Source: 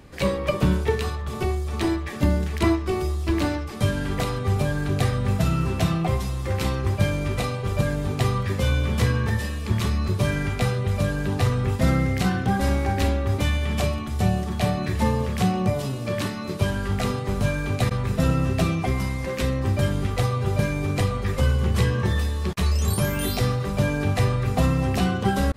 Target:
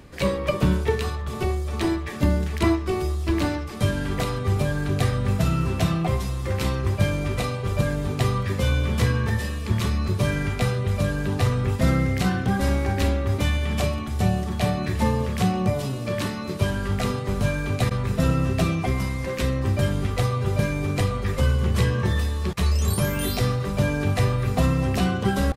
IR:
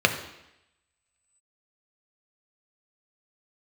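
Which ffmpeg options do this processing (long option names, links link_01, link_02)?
-af "bandreject=frequency=800:width=25,areverse,acompressor=mode=upward:threshold=-27dB:ratio=2.5,areverse,aecho=1:1:1194:0.0708"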